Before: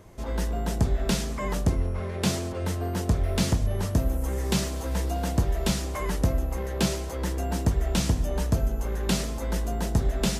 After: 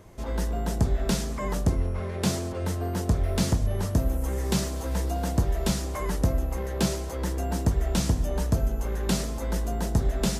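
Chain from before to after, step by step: dynamic bell 2.7 kHz, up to -4 dB, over -45 dBFS, Q 1.2

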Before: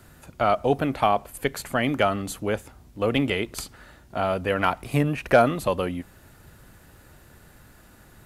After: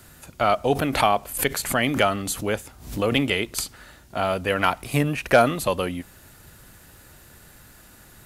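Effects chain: treble shelf 2.4 kHz +8 dB; 0.75–3.29 s: swell ahead of each attack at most 110 dB/s

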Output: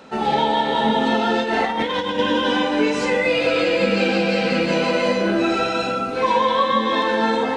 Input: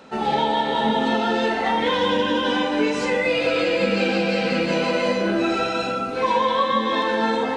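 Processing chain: 1.39–2.19 s: compressor with a negative ratio -23 dBFS, ratio -0.5; trim +2 dB

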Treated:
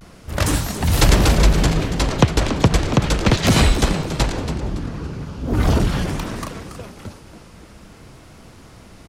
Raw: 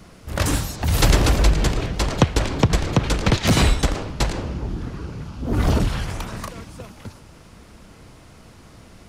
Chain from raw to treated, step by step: vibrato 0.39 Hz 39 cents; frequency-shifting echo 281 ms, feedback 35%, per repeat +110 Hz, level -11 dB; trim +2 dB

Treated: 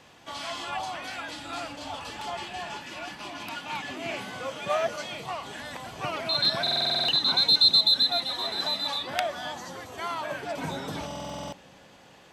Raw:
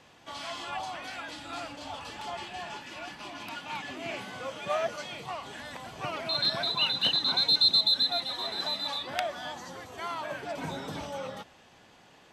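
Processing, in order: treble shelf 10 kHz +4 dB; on a send: feedback echo behind a low-pass 202 ms, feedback 70%, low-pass 510 Hz, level -17.5 dB; on the sum: buffer glitch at 6.62/11.06 s, samples 2048, times 9; trim +3 dB

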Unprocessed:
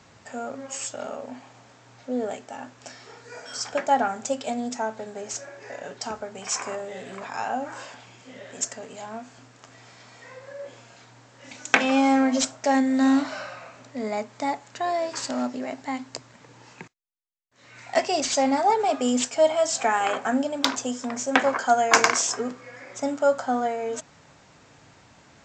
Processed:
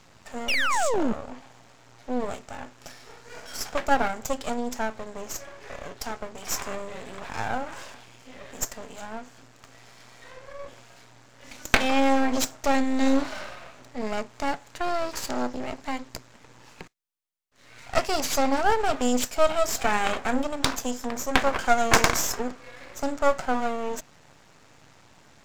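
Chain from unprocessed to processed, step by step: painted sound fall, 0.48–1.13 s, 200–3000 Hz -22 dBFS; half-wave rectifier; trim +2.5 dB

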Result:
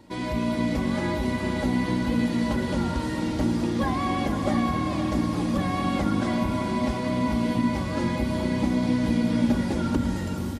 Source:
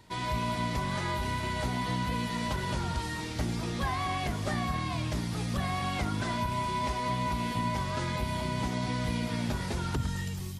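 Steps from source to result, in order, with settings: peaking EQ 290 Hz +12 dB 3 oct; comb 3.6 ms, depth 48%; echo that smears into a reverb 469 ms, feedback 49%, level -6.5 dB; trim -2.5 dB

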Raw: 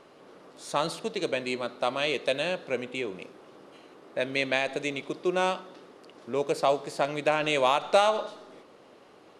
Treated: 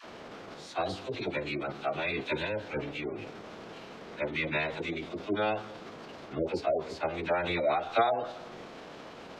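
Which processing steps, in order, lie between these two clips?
jump at every zero crossing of -35.5 dBFS; treble shelf 6.5 kHz +12 dB; phase dispersion lows, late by 59 ms, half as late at 640 Hz; spectral gate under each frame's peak -30 dB strong; distance through air 200 m; formant-preserving pitch shift -9.5 st; trim -3.5 dB

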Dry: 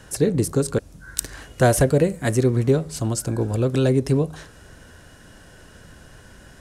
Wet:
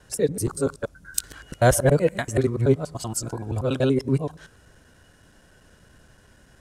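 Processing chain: time reversed locally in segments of 95 ms; spectral noise reduction 8 dB

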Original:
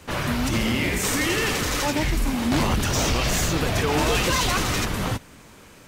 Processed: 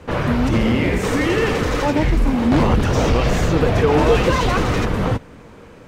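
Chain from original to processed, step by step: low-pass 1.2 kHz 6 dB/octave; peaking EQ 480 Hz +6.5 dB 0.22 oct; trim +7 dB

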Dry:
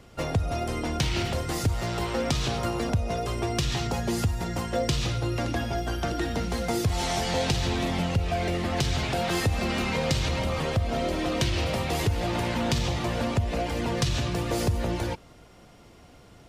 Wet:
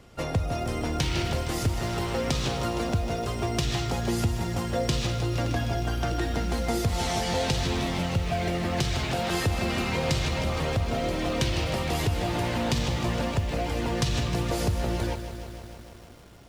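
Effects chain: bit-crushed delay 155 ms, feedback 80%, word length 8-bit, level -11.5 dB; trim -1 dB

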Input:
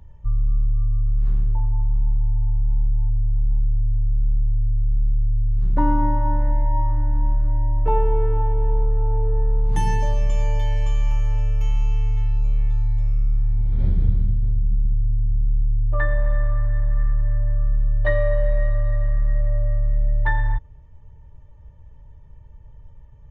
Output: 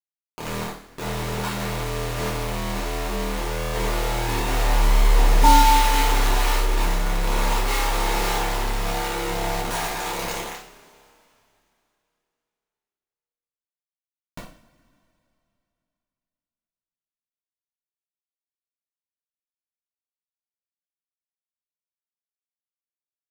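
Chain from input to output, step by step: Doppler pass-by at 4.88 s, 27 m/s, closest 20 m; bit crusher 5-bit; peaking EQ 82 Hz -13 dB 2.6 oct; band-stop 550 Hz, Q 16; two-slope reverb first 0.46 s, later 2.9 s, from -22 dB, DRR -7 dB; trim +2.5 dB

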